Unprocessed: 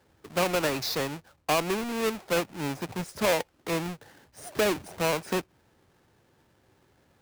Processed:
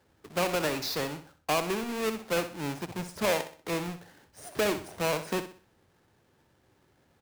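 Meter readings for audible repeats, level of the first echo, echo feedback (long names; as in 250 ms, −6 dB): 3, −11.0 dB, 36%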